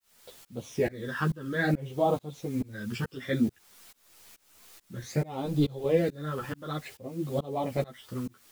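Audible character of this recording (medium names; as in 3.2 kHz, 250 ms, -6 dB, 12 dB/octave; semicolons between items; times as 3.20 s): phasing stages 12, 0.58 Hz, lowest notch 670–1900 Hz; a quantiser's noise floor 10-bit, dither triangular; tremolo saw up 2.3 Hz, depth 100%; a shimmering, thickened sound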